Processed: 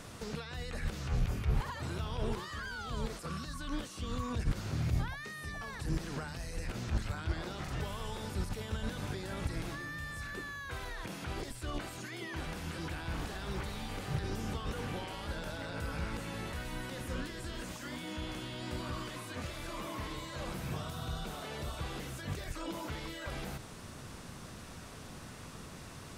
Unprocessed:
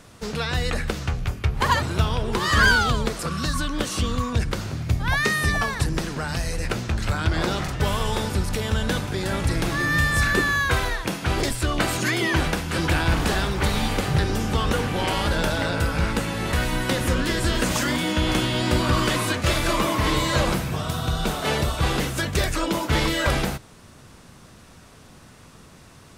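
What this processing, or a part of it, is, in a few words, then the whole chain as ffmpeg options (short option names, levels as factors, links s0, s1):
de-esser from a sidechain: -filter_complex "[0:a]asplit=2[s0][s1];[s1]highpass=f=4400:p=1,apad=whole_len=1154252[s2];[s0][s2]sidechaincompress=threshold=0.00398:ratio=12:attack=1.3:release=39"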